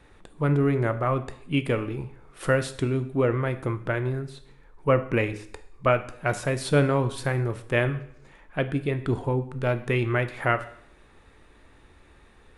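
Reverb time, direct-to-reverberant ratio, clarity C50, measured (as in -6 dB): 0.65 s, 10.0 dB, 14.5 dB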